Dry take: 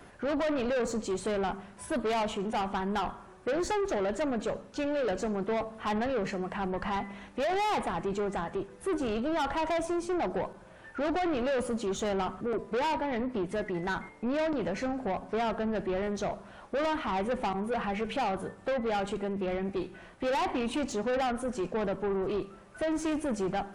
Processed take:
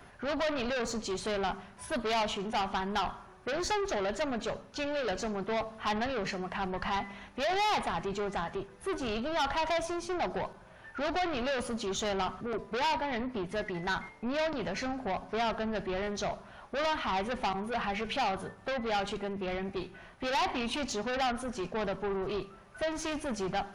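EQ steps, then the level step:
thirty-one-band graphic EQ 200 Hz −4 dB, 315 Hz −8 dB, 500 Hz −6 dB, 8,000 Hz −9 dB
dynamic equaliser 4,800 Hz, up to +7 dB, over −53 dBFS, Q 0.74
0.0 dB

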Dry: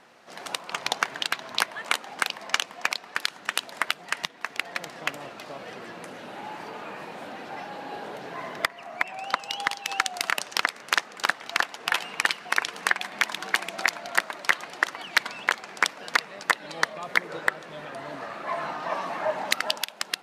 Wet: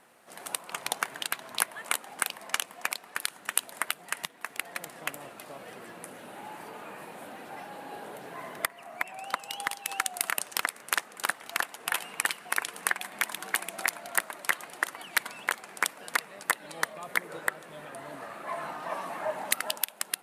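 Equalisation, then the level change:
high shelf with overshoot 7,500 Hz +11.5 dB, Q 1.5
−5.0 dB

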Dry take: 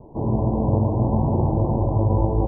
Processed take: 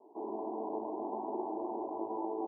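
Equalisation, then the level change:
four-pole ladder high-pass 370 Hz, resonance 45%
high-frequency loss of the air 470 metres
phaser with its sweep stopped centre 520 Hz, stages 6
0.0 dB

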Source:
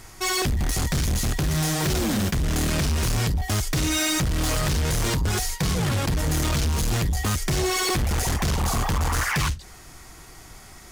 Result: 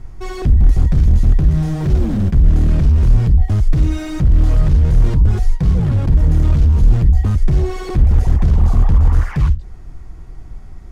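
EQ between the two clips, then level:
spectral tilt −4.5 dB per octave
−4.5 dB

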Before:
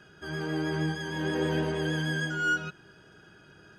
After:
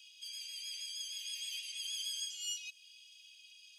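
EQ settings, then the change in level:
Butterworth high-pass 2,500 Hz 72 dB per octave
dynamic equaliser 3,200 Hz, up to −7 dB, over −56 dBFS, Q 1.3
+7.5 dB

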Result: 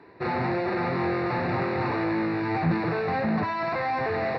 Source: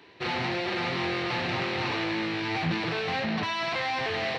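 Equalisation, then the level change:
moving average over 14 samples
+5.0 dB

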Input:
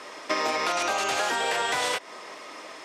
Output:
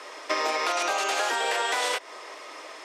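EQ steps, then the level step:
high-pass filter 320 Hz 24 dB per octave
0.0 dB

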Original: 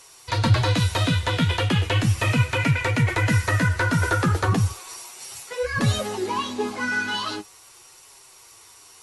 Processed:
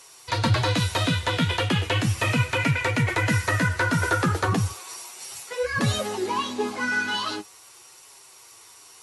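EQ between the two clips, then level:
high-pass filter 130 Hz 6 dB per octave
0.0 dB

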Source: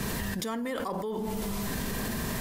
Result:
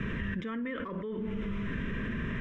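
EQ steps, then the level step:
low-pass filter 3,500 Hz 24 dB per octave
phaser with its sweep stopped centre 1,900 Hz, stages 4
0.0 dB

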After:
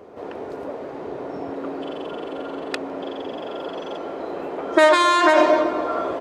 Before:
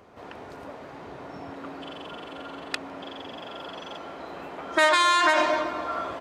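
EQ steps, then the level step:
parametric band 420 Hz +13.5 dB 1.7 octaves
0.0 dB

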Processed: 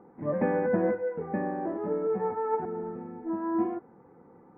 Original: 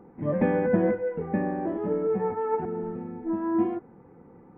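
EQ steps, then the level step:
low-pass filter 1,600 Hz 12 dB per octave
high-frequency loss of the air 330 metres
spectral tilt +3 dB per octave
+2.0 dB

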